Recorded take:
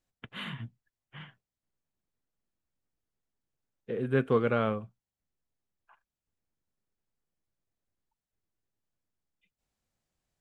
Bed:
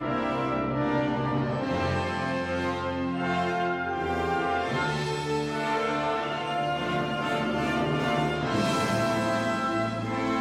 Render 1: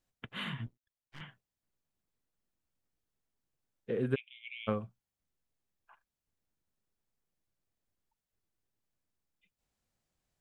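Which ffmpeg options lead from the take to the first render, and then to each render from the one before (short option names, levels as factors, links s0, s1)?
-filter_complex "[0:a]asettb=1/sr,asplit=3[s0][s1][s2];[s0]atrim=end=0.664[s3];[s1]atrim=start=0.66:end=1.21,asetpts=PTS-STARTPTS,afade=t=in:d=0.004:c=qsin,afade=t=out:st=0.546:d=0.004:c=qsin,aeval=exprs='max(val(0),0)':c=same[s4];[s2]atrim=start=1.206[s5];[s3][s4]acrossfade=d=0.004:c1=hsin:c2=qsin[s6];[s6][s5]acrossfade=d=0.004:c1=qsin:c2=hsin,asplit=3[s7][s8][s9];[s7]afade=t=out:st=4.14:d=0.02[s10];[s8]asuperpass=centerf=2800:order=12:qfactor=2,afade=t=in:st=4.14:d=0.02,afade=t=out:st=4.67:d=0.02[s11];[s9]afade=t=in:st=4.67:d=0.02[s12];[s10][s11][s12]amix=inputs=3:normalize=0"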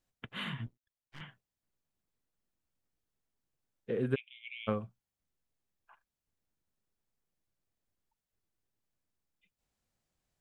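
-af anull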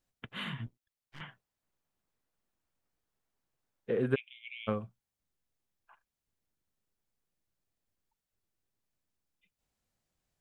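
-filter_complex "[0:a]asettb=1/sr,asplit=3[s0][s1][s2];[s0]atrim=end=1.204[s3];[s1]atrim=start=1.2:end=4.33,asetpts=PTS-STARTPTS,afade=t=in:d=0.004:c=qsin,afade=t=out:st=3.126:d=0.004:c=qsin,equalizer=f=970:t=o:w=2.5:g=5.5[s4];[s2]atrim=start=4.326[s5];[s3][s4]acrossfade=d=0.004:c1=hsin:c2=qsin[s6];[s6][s5]acrossfade=d=0.004:c1=qsin:c2=hsin"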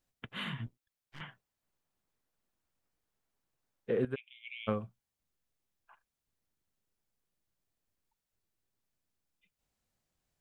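-filter_complex "[0:a]asplit=2[s0][s1];[s0]atrim=end=4.05,asetpts=PTS-STARTPTS,afade=t=out:st=4.046:d=0.004:c=hsin:silence=0.223872[s2];[s1]atrim=start=4.05,asetpts=PTS-STARTPTS,afade=t=in:d=0.46:silence=0.223872[s3];[s2][s3]concat=n=2:v=0:a=1"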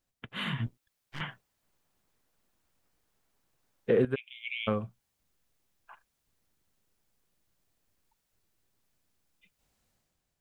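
-af "alimiter=limit=0.0631:level=0:latency=1:release=362,dynaudnorm=f=110:g=9:m=2.82"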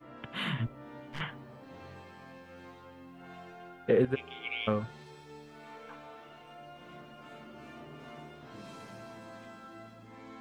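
-filter_complex "[1:a]volume=0.0794[s0];[0:a][s0]amix=inputs=2:normalize=0"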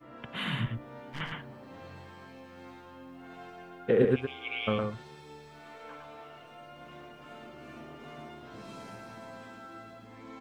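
-af "aecho=1:1:110:0.668"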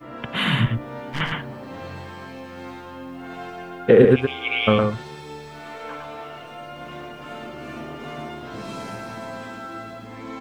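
-af "volume=3.98,alimiter=limit=0.794:level=0:latency=1"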